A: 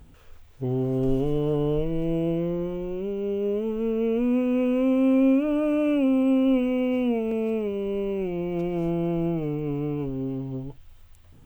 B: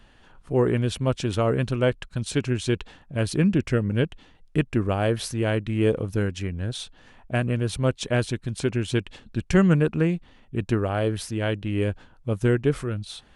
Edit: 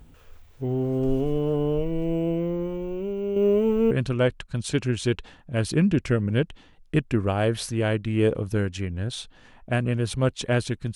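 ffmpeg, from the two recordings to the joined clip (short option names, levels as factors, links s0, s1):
-filter_complex "[0:a]asettb=1/sr,asplit=3[s0][s1][s2];[s0]atrim=end=3.364[s3];[s1]atrim=start=3.36:end=3.91,asetpts=PTS-STARTPTS,afade=t=in:d=0.004:c=qsin,afade=t=out:st=0.546:d=0.004:c=qsin,acontrast=51[s4];[s2]atrim=start=3.906[s5];[s3][s4]acrossfade=d=0.004:c1=hsin:c2=qsin[s6];[s6][s5]acrossfade=d=0.004:c1=qsin:c2=hsin,apad=whole_dur=10.95,atrim=end=10.95,atrim=end=3.912[s7];[1:a]atrim=start=1.528:end=8.57[s8];[s7][s8]acrossfade=d=0.004:c1=hsin:c2=hsin"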